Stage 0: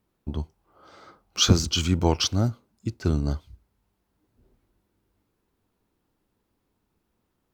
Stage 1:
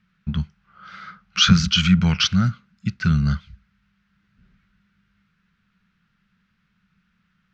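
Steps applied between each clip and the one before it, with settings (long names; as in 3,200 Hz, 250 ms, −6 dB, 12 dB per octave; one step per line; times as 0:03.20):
drawn EQ curve 110 Hz 0 dB, 190 Hz +14 dB, 290 Hz −16 dB, 910 Hz −9 dB, 1,400 Hz +13 dB, 2,600 Hz +10 dB, 6,100 Hz −1 dB, 9,900 Hz −21 dB
in parallel at +1.5 dB: brickwall limiter −16 dBFS, peak gain reduction 15.5 dB
on the sum: level −3.5 dB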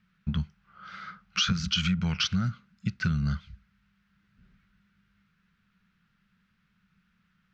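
downward compressor 10 to 1, threshold −20 dBFS, peak gain reduction 12.5 dB
level −3 dB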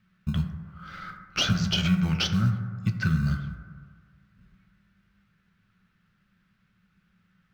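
in parallel at −12 dB: sample-rate reduction 1,300 Hz, jitter 0%
on the sum: convolution reverb RT60 1.8 s, pre-delay 4 ms, DRR 4.5 dB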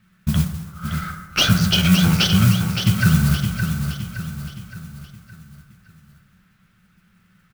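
noise that follows the level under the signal 16 dB
repeating echo 567 ms, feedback 46%, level −7 dB
level +8 dB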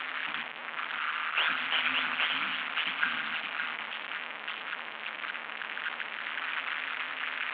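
linear delta modulator 16 kbit/s, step −18.5 dBFS
ring modulation 79 Hz
high-pass filter 1,300 Hz 12 dB per octave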